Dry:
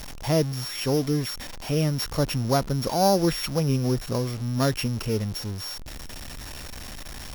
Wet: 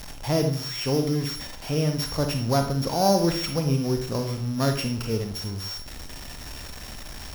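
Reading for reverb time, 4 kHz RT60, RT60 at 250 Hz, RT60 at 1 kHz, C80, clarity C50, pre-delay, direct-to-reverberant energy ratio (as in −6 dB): 0.50 s, 0.40 s, 0.65 s, 0.45 s, 11.5 dB, 7.0 dB, 34 ms, 4.5 dB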